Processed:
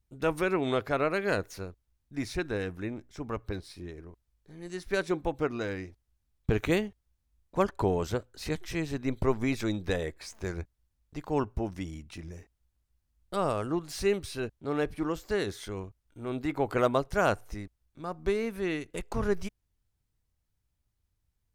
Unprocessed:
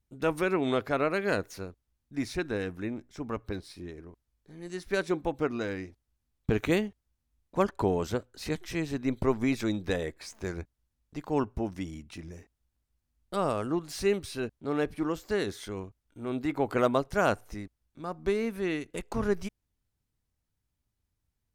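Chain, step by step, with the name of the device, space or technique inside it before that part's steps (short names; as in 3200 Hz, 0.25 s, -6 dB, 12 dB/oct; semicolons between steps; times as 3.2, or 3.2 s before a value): low shelf boost with a cut just above (low shelf 84 Hz +5.5 dB; bell 240 Hz -3.5 dB 0.68 oct)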